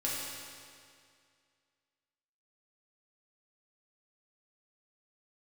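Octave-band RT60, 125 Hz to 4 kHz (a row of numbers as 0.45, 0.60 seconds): 2.2, 2.2, 2.2, 2.2, 2.1, 2.0 seconds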